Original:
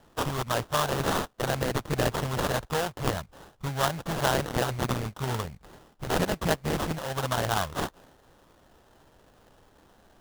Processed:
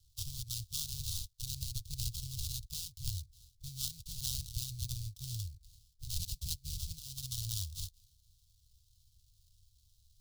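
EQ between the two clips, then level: elliptic band-stop 100–4200 Hz, stop band 40 dB; -2.0 dB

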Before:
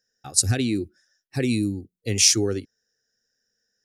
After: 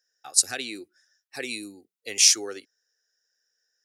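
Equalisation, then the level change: HPF 690 Hz 12 dB/oct; 0.0 dB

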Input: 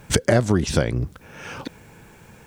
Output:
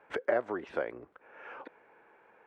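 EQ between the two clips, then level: tone controls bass -9 dB, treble -15 dB; three-band isolator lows -23 dB, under 330 Hz, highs -21 dB, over 2400 Hz; -7.5 dB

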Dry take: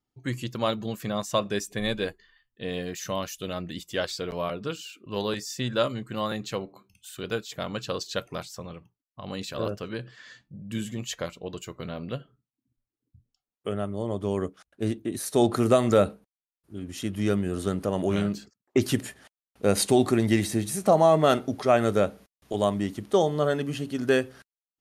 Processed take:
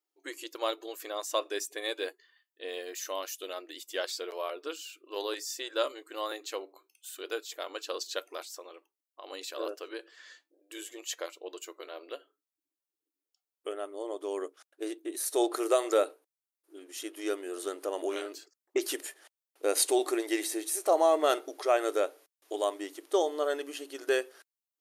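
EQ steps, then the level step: brick-wall FIR high-pass 290 Hz; high shelf 6900 Hz +8.5 dB; -5.0 dB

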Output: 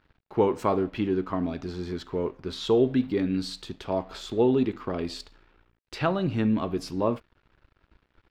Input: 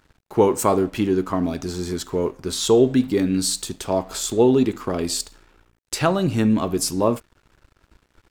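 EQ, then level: air absorption 350 m; high shelf 2900 Hz +11 dB; -5.5 dB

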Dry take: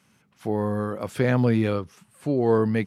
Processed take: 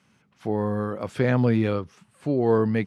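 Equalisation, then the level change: air absorption 52 m; 0.0 dB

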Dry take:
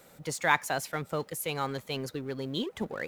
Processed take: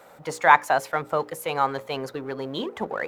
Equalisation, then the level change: bell 890 Hz +15 dB 2.6 oct; notches 60/120/180/240/300/360/420/480/540 Hz; -3.0 dB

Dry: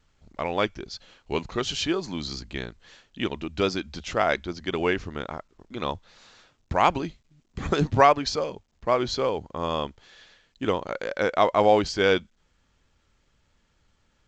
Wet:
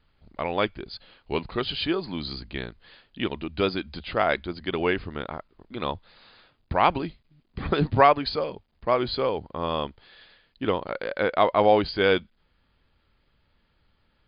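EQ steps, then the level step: brick-wall FIR low-pass 5000 Hz; 0.0 dB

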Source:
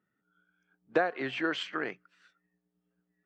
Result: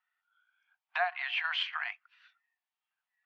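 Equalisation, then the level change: rippled Chebyshev high-pass 690 Hz, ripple 6 dB; air absorption 310 m; tilt +4 dB/oct; +5.0 dB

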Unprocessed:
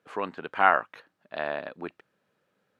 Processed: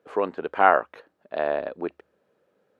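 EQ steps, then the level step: bell 73 Hz +13.5 dB 0.21 oct; bell 460 Hz +12 dB 1.9 oct; -2.5 dB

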